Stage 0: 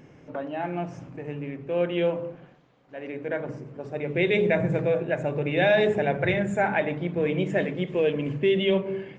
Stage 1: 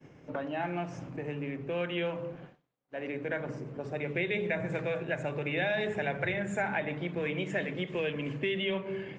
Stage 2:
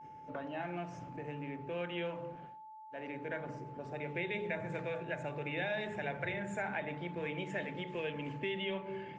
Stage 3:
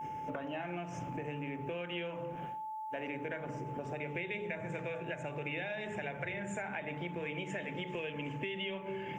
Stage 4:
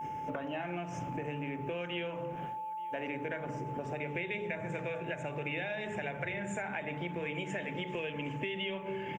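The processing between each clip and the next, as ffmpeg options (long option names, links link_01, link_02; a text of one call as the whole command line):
ffmpeg -i in.wav -filter_complex "[0:a]agate=range=-33dB:threshold=-46dB:ratio=3:detection=peak,acrossover=split=210|1000|2600[link_01][link_02][link_03][link_04];[link_01]acompressor=threshold=-42dB:ratio=4[link_05];[link_02]acompressor=threshold=-37dB:ratio=4[link_06];[link_03]acompressor=threshold=-35dB:ratio=4[link_07];[link_04]acompressor=threshold=-45dB:ratio=4[link_08];[link_05][link_06][link_07][link_08]amix=inputs=4:normalize=0,volume=1dB" out.wav
ffmpeg -i in.wav -af "bandreject=frequency=60.81:width_type=h:width=4,bandreject=frequency=121.62:width_type=h:width=4,bandreject=frequency=182.43:width_type=h:width=4,bandreject=frequency=243.24:width_type=h:width=4,bandreject=frequency=304.05:width_type=h:width=4,bandreject=frequency=364.86:width_type=h:width=4,bandreject=frequency=425.67:width_type=h:width=4,bandreject=frequency=486.48:width_type=h:width=4,bandreject=frequency=547.29:width_type=h:width=4,bandreject=frequency=608.1:width_type=h:width=4,bandreject=frequency=668.91:width_type=h:width=4,bandreject=frequency=729.72:width_type=h:width=4,bandreject=frequency=790.53:width_type=h:width=4,bandreject=frequency=851.34:width_type=h:width=4,aeval=exprs='val(0)+0.00708*sin(2*PI*870*n/s)':channel_layout=same,volume=-6dB" out.wav
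ffmpeg -i in.wav -af "acompressor=threshold=-47dB:ratio=10,aexciter=amount=1.2:drive=3.6:freq=2300,volume=10.5dB" out.wav
ffmpeg -i in.wav -af "aecho=1:1:877:0.0668,volume=2dB" out.wav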